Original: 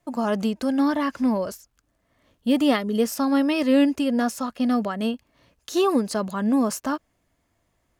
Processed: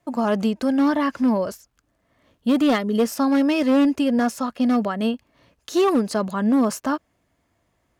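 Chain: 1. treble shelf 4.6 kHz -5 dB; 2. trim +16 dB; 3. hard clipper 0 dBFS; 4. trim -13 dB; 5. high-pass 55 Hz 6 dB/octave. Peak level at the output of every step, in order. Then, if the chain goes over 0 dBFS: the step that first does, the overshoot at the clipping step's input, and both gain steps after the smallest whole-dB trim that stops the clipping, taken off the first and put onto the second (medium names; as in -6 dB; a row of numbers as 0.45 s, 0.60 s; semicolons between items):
-8.5 dBFS, +7.5 dBFS, 0.0 dBFS, -13.0 dBFS, -11.0 dBFS; step 2, 7.5 dB; step 2 +8 dB, step 4 -5 dB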